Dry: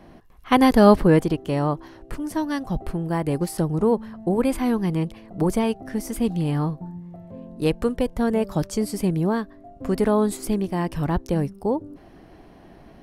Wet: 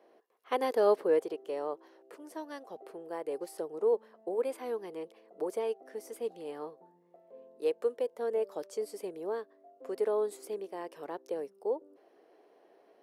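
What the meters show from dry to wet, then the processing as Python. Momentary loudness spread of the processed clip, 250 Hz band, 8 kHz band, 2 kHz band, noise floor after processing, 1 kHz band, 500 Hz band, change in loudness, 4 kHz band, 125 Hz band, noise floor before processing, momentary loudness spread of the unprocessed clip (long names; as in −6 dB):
15 LU, −23.0 dB, −15.5 dB, −15.0 dB, −64 dBFS, −13.5 dB, −7.5 dB, −12.0 dB, −15.5 dB, below −35 dB, −48 dBFS, 13 LU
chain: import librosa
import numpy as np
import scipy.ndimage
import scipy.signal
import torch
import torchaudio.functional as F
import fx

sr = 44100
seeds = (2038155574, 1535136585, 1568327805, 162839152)

y = fx.ladder_highpass(x, sr, hz=400.0, resonance_pct=60)
y = y * 10.0 ** (-5.0 / 20.0)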